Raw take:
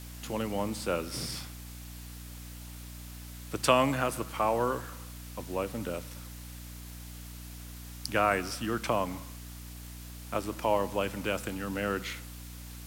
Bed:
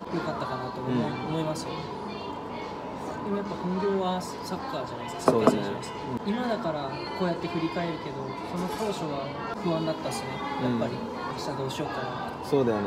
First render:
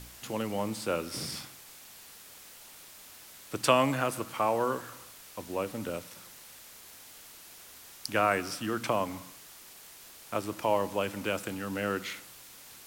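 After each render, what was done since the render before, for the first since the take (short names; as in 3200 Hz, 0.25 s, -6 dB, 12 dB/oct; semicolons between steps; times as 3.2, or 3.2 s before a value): de-hum 60 Hz, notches 5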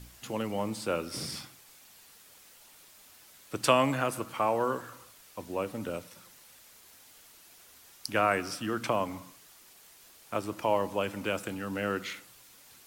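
denoiser 6 dB, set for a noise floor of -51 dBFS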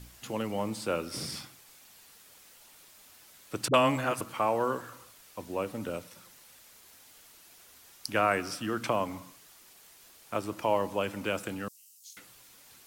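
3.68–4.21 dispersion highs, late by 57 ms, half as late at 330 Hz; 11.68–12.17 inverse Chebyshev high-pass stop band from 1700 Hz, stop band 60 dB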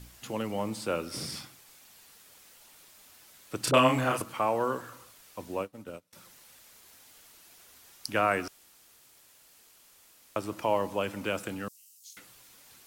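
3.63–4.22 doubler 31 ms -2 dB; 5.59–6.13 upward expander 2.5:1, over -47 dBFS; 8.48–10.36 room tone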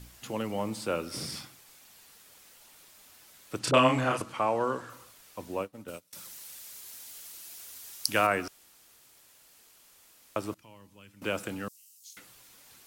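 3.59–4.9 LPF 8600 Hz; 5.88–8.27 high shelf 3200 Hz +11.5 dB; 10.54–11.22 passive tone stack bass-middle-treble 6-0-2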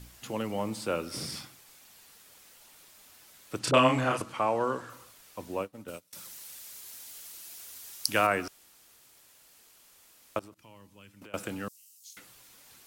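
10.39–11.34 compressor 12:1, threshold -46 dBFS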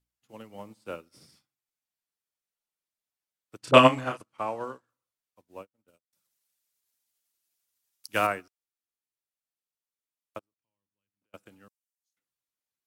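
maximiser +8 dB; upward expander 2.5:1, over -41 dBFS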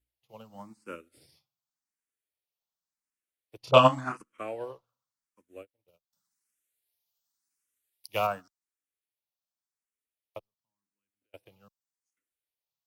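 endless phaser +0.89 Hz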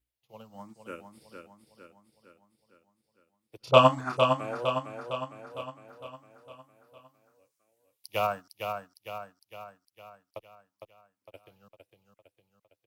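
feedback echo 0.457 s, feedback 54%, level -6 dB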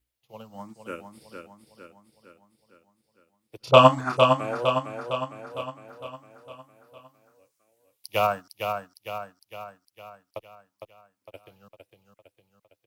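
gain +5 dB; limiter -2 dBFS, peak gain reduction 2.5 dB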